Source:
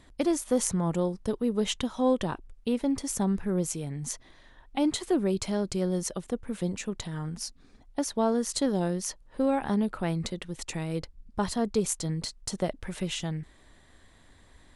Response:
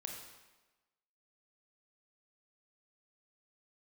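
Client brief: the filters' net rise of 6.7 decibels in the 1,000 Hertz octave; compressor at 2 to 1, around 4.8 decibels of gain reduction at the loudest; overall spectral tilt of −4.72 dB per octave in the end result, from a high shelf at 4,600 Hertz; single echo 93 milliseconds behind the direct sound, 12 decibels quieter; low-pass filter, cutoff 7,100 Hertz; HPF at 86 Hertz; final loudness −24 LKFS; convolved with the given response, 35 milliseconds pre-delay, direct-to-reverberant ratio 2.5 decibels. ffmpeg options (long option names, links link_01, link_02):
-filter_complex "[0:a]highpass=86,lowpass=7100,equalizer=frequency=1000:width_type=o:gain=8.5,highshelf=frequency=4600:gain=3.5,acompressor=threshold=-27dB:ratio=2,aecho=1:1:93:0.251,asplit=2[link_01][link_02];[1:a]atrim=start_sample=2205,adelay=35[link_03];[link_02][link_03]afir=irnorm=-1:irlink=0,volume=-0.5dB[link_04];[link_01][link_04]amix=inputs=2:normalize=0,volume=5.5dB"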